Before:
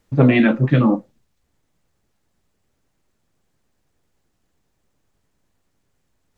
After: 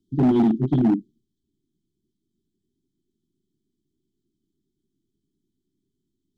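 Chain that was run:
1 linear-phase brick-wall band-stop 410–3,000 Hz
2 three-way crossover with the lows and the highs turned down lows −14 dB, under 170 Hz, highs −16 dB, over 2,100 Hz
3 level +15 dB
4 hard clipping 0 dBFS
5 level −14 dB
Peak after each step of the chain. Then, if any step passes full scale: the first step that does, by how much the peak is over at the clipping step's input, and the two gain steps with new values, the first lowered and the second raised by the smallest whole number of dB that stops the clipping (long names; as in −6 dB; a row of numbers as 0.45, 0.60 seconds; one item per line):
−4.0, −6.5, +8.5, 0.0, −14.0 dBFS
step 3, 8.5 dB
step 3 +6 dB, step 5 −5 dB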